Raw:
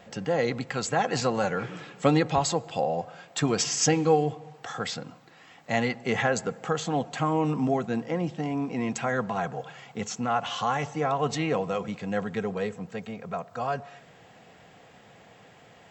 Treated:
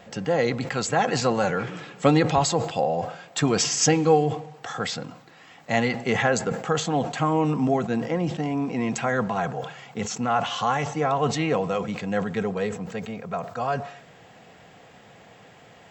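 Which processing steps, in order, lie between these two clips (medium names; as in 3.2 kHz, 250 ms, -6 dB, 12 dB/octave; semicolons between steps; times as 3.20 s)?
decay stretcher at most 100 dB/s; trim +3 dB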